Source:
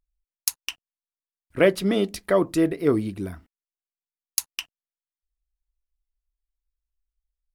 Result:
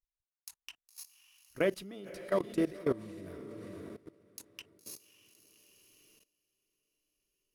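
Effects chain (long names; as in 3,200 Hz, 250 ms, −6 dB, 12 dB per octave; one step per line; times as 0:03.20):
feedback delay with all-pass diffusion 558 ms, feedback 41%, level −8.5 dB
output level in coarse steps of 19 dB
level −7.5 dB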